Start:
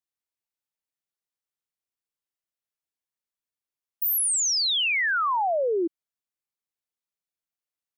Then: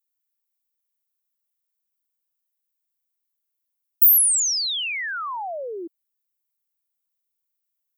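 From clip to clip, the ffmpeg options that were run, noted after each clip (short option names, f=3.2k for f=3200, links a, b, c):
-af "aemphasis=mode=production:type=bsi,volume=-5.5dB"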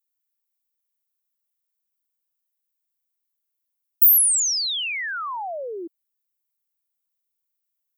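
-af anull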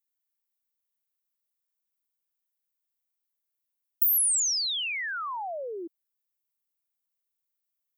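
-af "acompressor=threshold=-17dB:ratio=6,volume=-4dB"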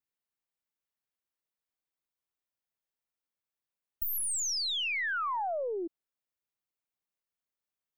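-af "aeval=exprs='0.2*(cos(1*acos(clip(val(0)/0.2,-1,1)))-cos(1*PI/2))+0.0112*(cos(4*acos(clip(val(0)/0.2,-1,1)))-cos(4*PI/2))':c=same,lowpass=f=2.6k:p=1,volume=2dB"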